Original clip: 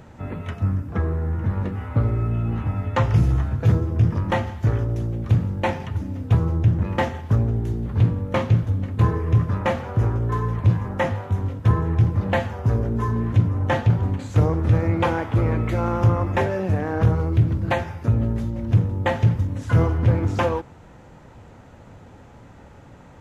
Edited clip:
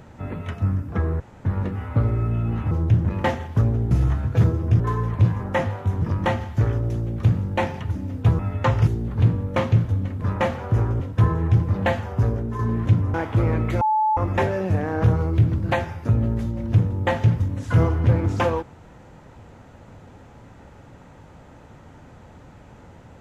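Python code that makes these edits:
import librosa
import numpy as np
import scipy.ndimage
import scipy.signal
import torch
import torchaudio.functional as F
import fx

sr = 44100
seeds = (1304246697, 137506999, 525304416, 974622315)

y = fx.edit(x, sr, fx.room_tone_fill(start_s=1.2, length_s=0.25),
    fx.swap(start_s=2.71, length_s=0.48, other_s=6.45, other_length_s=1.2),
    fx.cut(start_s=8.99, length_s=0.47),
    fx.move(start_s=10.25, length_s=1.22, to_s=4.08),
    fx.fade_out_to(start_s=12.69, length_s=0.37, floor_db=-6.5),
    fx.cut(start_s=13.61, length_s=1.52),
    fx.bleep(start_s=15.8, length_s=0.36, hz=865.0, db=-16.5), tone=tone)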